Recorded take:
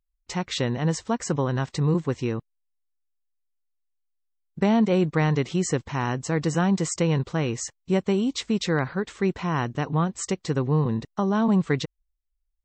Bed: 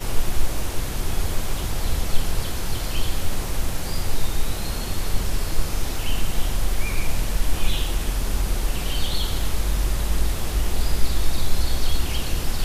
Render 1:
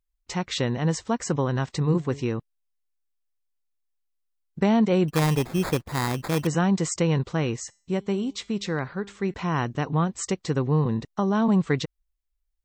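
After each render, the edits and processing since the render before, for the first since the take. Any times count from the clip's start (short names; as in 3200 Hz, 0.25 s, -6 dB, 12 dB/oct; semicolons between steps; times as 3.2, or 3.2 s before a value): 1.81–2.23 de-hum 140.8 Hz, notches 5; 5.08–6.47 sample-rate reducer 2900 Hz; 7.56–9.34 resonator 200 Hz, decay 0.45 s, mix 40%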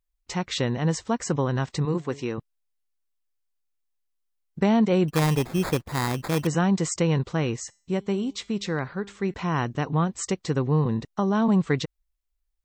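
1.85–2.38 HPF 260 Hz 6 dB/oct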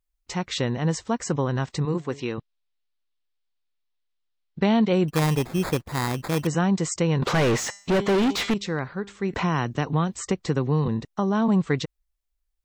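2.2–4.93 synth low-pass 3900 Hz, resonance Q 1.9; 7.22–8.54 overdrive pedal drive 36 dB, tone 2100 Hz, clips at -13.5 dBFS; 9.33–10.88 three-band squash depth 70%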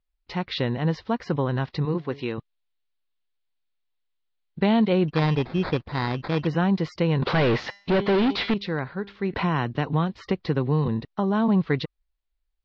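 steep low-pass 4700 Hz 48 dB/oct; notch 1200 Hz, Q 27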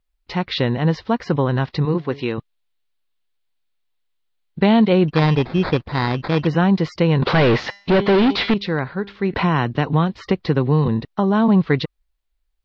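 gain +6 dB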